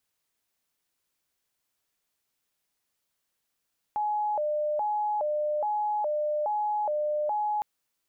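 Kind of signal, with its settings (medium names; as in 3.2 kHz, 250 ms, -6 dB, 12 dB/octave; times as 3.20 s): siren hi-lo 600–841 Hz 1.2 per s sine -25 dBFS 3.66 s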